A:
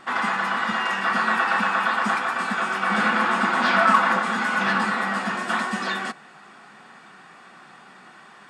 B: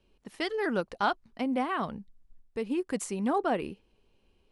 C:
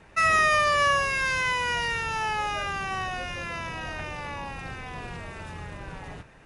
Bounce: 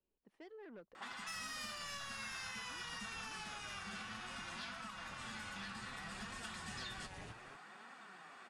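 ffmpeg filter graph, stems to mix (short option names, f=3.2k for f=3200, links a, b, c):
-filter_complex "[0:a]adelay=950,volume=-4dB[a];[1:a]lowpass=f=1k:p=1,asoftclip=type=tanh:threshold=-27.5dB,volume=-16.5dB[b];[2:a]asoftclip=type=tanh:threshold=-21dB,adelay=1100,volume=1.5dB[c];[a][c]amix=inputs=2:normalize=0,flanger=delay=3.6:depth=7.2:regen=50:speed=0.63:shape=triangular,acompressor=threshold=-33dB:ratio=6,volume=0dB[d];[b][d]amix=inputs=2:normalize=0,lowshelf=f=200:g=-9.5,acrossover=split=180|3000[e][f][g];[f]acompressor=threshold=-50dB:ratio=6[h];[e][h][g]amix=inputs=3:normalize=0"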